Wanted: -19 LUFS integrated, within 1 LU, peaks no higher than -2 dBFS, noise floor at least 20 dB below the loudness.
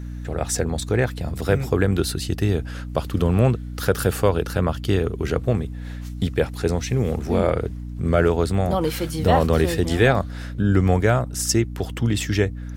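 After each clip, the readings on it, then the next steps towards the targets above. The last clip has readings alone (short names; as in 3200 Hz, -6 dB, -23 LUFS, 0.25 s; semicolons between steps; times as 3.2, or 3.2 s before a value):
hum 60 Hz; harmonics up to 300 Hz; hum level -29 dBFS; loudness -22.0 LUFS; peak -4.0 dBFS; loudness target -19.0 LUFS
-> de-hum 60 Hz, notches 5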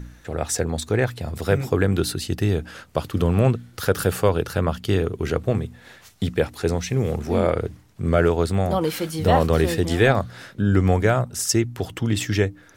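hum none; loudness -22.5 LUFS; peak -3.5 dBFS; loudness target -19.0 LUFS
-> gain +3.5 dB; limiter -2 dBFS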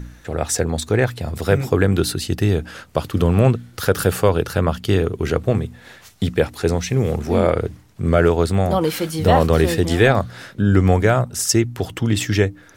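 loudness -19.0 LUFS; peak -2.0 dBFS; noise floor -46 dBFS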